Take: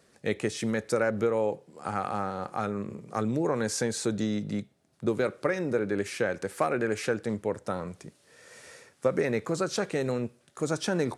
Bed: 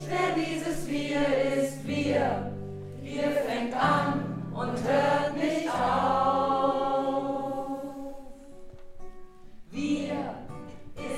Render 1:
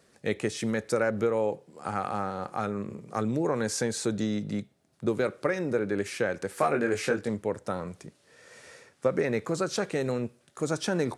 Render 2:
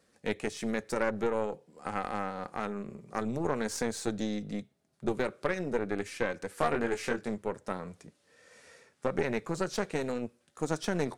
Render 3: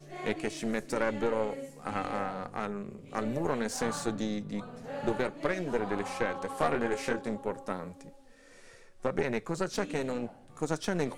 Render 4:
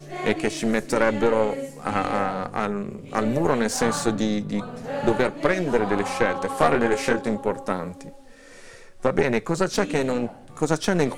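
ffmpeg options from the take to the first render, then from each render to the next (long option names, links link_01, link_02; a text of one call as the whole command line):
ffmpeg -i in.wav -filter_complex "[0:a]asettb=1/sr,asplit=3[link_01][link_02][link_03];[link_01]atrim=end=6.554[link_04];[link_02]atrim=start=6.55:end=7.29,asetpts=PTS-STARTPTS,afade=type=in:duration=0.004:curve=qsin,afade=type=out:start_time=0.736:duration=0.004:curve=qsin,asplit=2[link_05][link_06];[link_06]adelay=21,volume=-4dB[link_07];[link_05][link_07]amix=inputs=2:normalize=0,atrim=end_sample=32634[link_08];[link_03]atrim=start=7.286[link_09];[link_04][link_08]acrossfade=duration=0.004:curve1=hsin:curve2=qsin[link_10];[link_10][link_09]acrossfade=duration=0.004:curve1=qsin:curve2=hsin,asettb=1/sr,asplit=3[link_11][link_12][link_13];[link_11]atrim=end=8.064[link_14];[link_12]atrim=start=8.06:end=9.32,asetpts=PTS-STARTPTS,afade=type=in:duration=0.004:curve=qsin,afade=type=out:start_time=1.256:duration=0.004:curve=qsin,highshelf=frequency=9000:gain=-7.5[link_15];[link_13]atrim=start=9.316[link_16];[link_14][link_15]acrossfade=duration=0.004:curve1=hsin:curve2=qsin[link_17];[link_17][link_16]acrossfade=duration=0.004:curve1=qsin:curve2=hsin" out.wav
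ffmpeg -i in.wav -af "flanger=delay=3.8:depth=1.4:regen=-58:speed=0.48:shape=sinusoidal,aeval=exprs='0.158*(cos(1*acos(clip(val(0)/0.158,-1,1)))-cos(1*PI/2))+0.0251*(cos(4*acos(clip(val(0)/0.158,-1,1)))-cos(4*PI/2))+0.00398*(cos(7*acos(clip(val(0)/0.158,-1,1)))-cos(7*PI/2))':channel_layout=same" out.wav
ffmpeg -i in.wav -i bed.wav -filter_complex "[1:a]volume=-14.5dB[link_01];[0:a][link_01]amix=inputs=2:normalize=0" out.wav
ffmpeg -i in.wav -af "volume=9.5dB" out.wav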